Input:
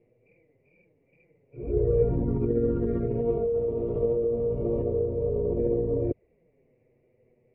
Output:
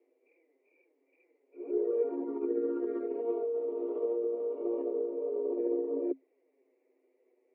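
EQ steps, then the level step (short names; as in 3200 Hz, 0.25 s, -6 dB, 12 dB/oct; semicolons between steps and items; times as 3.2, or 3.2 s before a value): rippled Chebyshev high-pass 260 Hz, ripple 6 dB; -1.0 dB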